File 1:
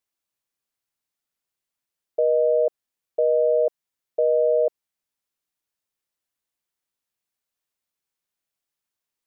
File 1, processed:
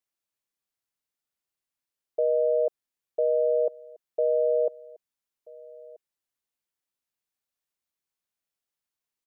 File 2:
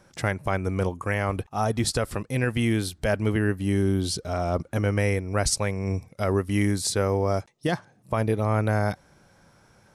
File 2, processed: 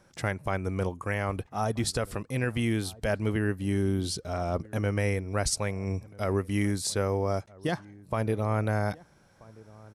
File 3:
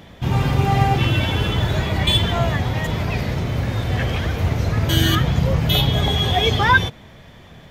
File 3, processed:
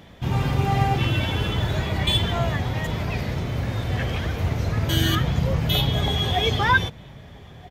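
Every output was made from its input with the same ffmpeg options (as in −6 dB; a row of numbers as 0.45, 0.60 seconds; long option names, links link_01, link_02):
-filter_complex "[0:a]asplit=2[link_01][link_02];[link_02]adelay=1283,volume=-22dB,highshelf=frequency=4000:gain=-28.9[link_03];[link_01][link_03]amix=inputs=2:normalize=0,volume=-4dB"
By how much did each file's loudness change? −4.0, −4.0, −4.0 LU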